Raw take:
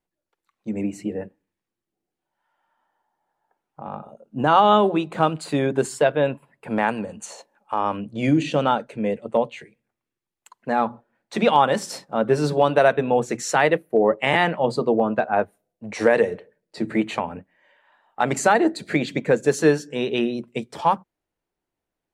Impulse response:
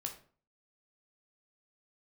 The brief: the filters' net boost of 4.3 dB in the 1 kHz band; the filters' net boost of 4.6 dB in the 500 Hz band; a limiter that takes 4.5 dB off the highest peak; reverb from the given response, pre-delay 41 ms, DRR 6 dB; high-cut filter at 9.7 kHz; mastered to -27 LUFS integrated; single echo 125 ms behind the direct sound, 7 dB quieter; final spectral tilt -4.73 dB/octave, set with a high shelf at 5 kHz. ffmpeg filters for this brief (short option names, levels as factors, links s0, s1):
-filter_complex "[0:a]lowpass=9700,equalizer=f=500:t=o:g=4.5,equalizer=f=1000:t=o:g=3.5,highshelf=f=5000:g=9,alimiter=limit=0.596:level=0:latency=1,aecho=1:1:125:0.447,asplit=2[s0][s1];[1:a]atrim=start_sample=2205,adelay=41[s2];[s1][s2]afir=irnorm=-1:irlink=0,volume=0.562[s3];[s0][s3]amix=inputs=2:normalize=0,volume=0.335"